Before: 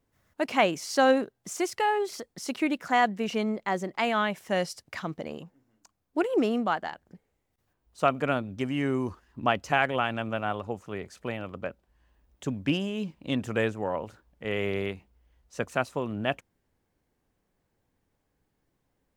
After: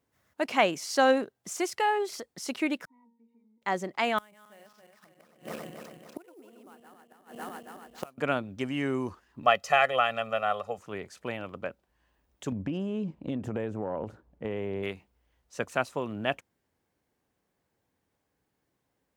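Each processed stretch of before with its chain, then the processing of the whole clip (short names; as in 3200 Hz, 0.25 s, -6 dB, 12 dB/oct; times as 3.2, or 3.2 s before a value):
2.85–3.62 vowel filter u + octave resonator A#, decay 0.33 s + compressor 2.5:1, threshold -59 dBFS
4.18–8.18 regenerating reverse delay 0.138 s, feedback 68%, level -1.5 dB + flipped gate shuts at -23 dBFS, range -28 dB + sample-rate reducer 11000 Hz, jitter 20%
9.43–10.78 HPF 380 Hz 6 dB/oct + comb 1.6 ms, depth 99%
12.52–14.83 tilt shelf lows +9 dB, about 1100 Hz + compressor 12:1, threshold -25 dBFS
whole clip: HPF 62 Hz; low shelf 270 Hz -5 dB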